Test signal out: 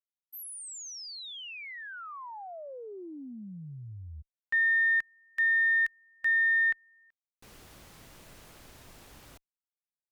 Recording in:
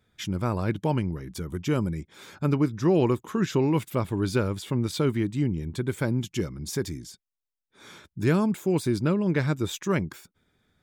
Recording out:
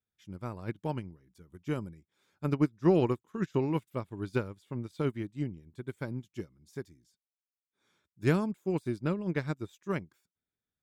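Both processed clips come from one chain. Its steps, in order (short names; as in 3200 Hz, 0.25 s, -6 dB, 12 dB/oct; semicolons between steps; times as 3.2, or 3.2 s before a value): added harmonics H 3 -29 dB, 4 -37 dB, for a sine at -10.5 dBFS; upward expander 2.5:1, over -35 dBFS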